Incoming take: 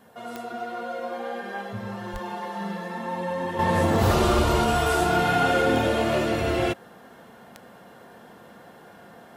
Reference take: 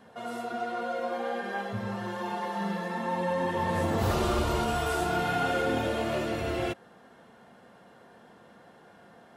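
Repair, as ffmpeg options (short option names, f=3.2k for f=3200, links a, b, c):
-filter_complex "[0:a]adeclick=t=4,asplit=3[a][b][c];[a]afade=t=out:st=2.12:d=0.02[d];[b]highpass=f=140:w=0.5412,highpass=f=140:w=1.3066,afade=t=in:st=2.12:d=0.02,afade=t=out:st=2.24:d=0.02[e];[c]afade=t=in:st=2.24:d=0.02[f];[d][e][f]amix=inputs=3:normalize=0,agate=range=-21dB:threshold=-41dB,asetnsamples=n=441:p=0,asendcmd='3.59 volume volume -6.5dB',volume=0dB"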